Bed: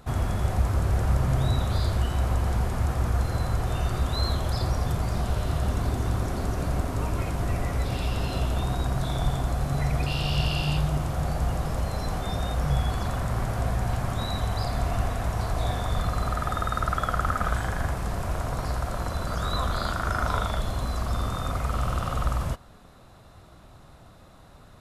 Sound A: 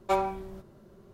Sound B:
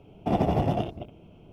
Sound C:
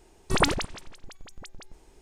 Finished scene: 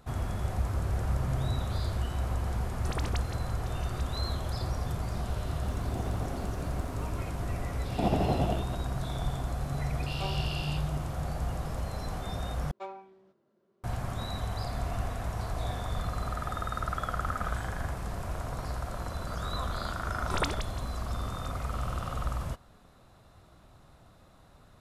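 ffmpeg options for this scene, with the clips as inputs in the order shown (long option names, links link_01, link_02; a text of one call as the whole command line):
ffmpeg -i bed.wav -i cue0.wav -i cue1.wav -i cue2.wav -filter_complex "[3:a]asplit=2[link_01][link_02];[2:a]asplit=2[link_03][link_04];[1:a]asplit=2[link_05][link_06];[0:a]volume=-6.5dB[link_07];[link_01]acompressor=threshold=-27dB:ratio=6:attack=3.2:release=140:knee=1:detection=peak[link_08];[link_03]aeval=exprs='val(0)+0.5*0.02*sgn(val(0))':channel_layout=same[link_09];[link_06]highpass=230,lowpass=4800[link_10];[link_07]asplit=2[link_11][link_12];[link_11]atrim=end=12.714[link_13];[link_10]atrim=end=1.13,asetpts=PTS-STARTPTS,volume=-15dB[link_14];[link_12]atrim=start=13.836[link_15];[link_08]atrim=end=2.01,asetpts=PTS-STARTPTS,volume=-6dB,afade=type=in:duration=0.004:curve=hsin,afade=type=out:start_time=2.006:duration=0.004:curve=hsin,adelay=2550[link_16];[link_09]atrim=end=1.52,asetpts=PTS-STARTPTS,volume=-17.5dB,afade=type=in:duration=0.004:curve=hsin,afade=type=out:start_time=1.516:duration=0.004:curve=hsin,adelay=249165S[link_17];[link_04]atrim=end=1.52,asetpts=PTS-STARTPTS,volume=-3.5dB,afade=type=in:duration=0.004:curve=hsin,afade=type=out:start_time=1.516:duration=0.004:curve=hsin,adelay=7720[link_18];[link_05]atrim=end=1.13,asetpts=PTS-STARTPTS,volume=-13.5dB,afade=type=in:duration=0.004:curve=hsin,afade=type=out:start_time=1.126:duration=0.004:curve=hsin,adelay=10110[link_19];[link_02]atrim=end=2.01,asetpts=PTS-STARTPTS,volume=-9dB,afade=type=in:duration=0.004:curve=hsin,afade=type=out:start_time=2.006:duration=0.004:curve=hsin,adelay=20000[link_20];[link_13][link_14]acrossfade=duration=0.004:curve1=hsin:curve2=hsin[link_21];[link_21][link_15]acrossfade=duration=0.004:curve1=hsin:curve2=hsin[link_22];[link_22][link_16][link_17][link_18][link_19][link_20]amix=inputs=6:normalize=0" out.wav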